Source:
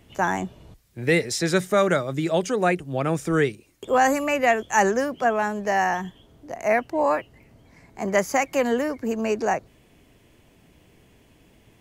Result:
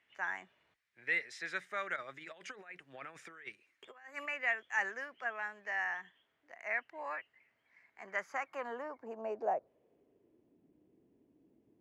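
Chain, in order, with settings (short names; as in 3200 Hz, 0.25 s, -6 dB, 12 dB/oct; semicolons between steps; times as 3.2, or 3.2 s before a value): 1.96–4.26 negative-ratio compressor -26 dBFS, ratio -0.5; band-pass sweep 1900 Hz -> 310 Hz, 7.93–10.53; gain -7 dB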